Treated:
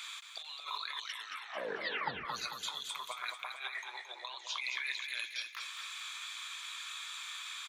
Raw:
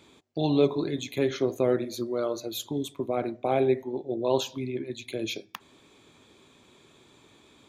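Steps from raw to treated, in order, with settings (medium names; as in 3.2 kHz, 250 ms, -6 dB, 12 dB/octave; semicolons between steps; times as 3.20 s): Chebyshev high-pass 1.2 kHz, order 4; compressor with a negative ratio -53 dBFS, ratio -1; 0.94 s: tape stop 1.31 s; 3.56–4.61 s: steep low-pass 9.8 kHz; feedback delay 222 ms, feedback 49%, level -6.5 dB; trim +9 dB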